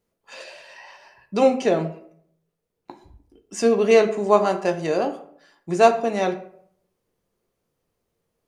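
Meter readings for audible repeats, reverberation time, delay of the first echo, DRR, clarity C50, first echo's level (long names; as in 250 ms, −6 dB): no echo audible, 0.60 s, no echo audible, 6.0 dB, 12.0 dB, no echo audible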